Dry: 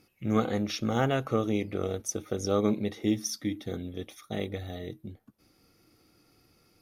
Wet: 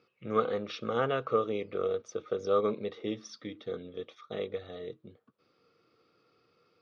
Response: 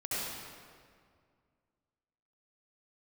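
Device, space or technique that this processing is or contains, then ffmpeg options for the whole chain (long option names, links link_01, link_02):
kitchen radio: -af "highpass=180,equalizer=frequency=210:width_type=q:width=4:gain=-5,equalizer=frequency=300:width_type=q:width=4:gain=-8,equalizer=frequency=470:width_type=q:width=4:gain=8,equalizer=frequency=790:width_type=q:width=4:gain=-6,equalizer=frequency=1200:width_type=q:width=4:gain=8,equalizer=frequency=2000:width_type=q:width=4:gain=-4,lowpass=frequency=4200:width=0.5412,lowpass=frequency=4200:width=1.3066,volume=-3dB"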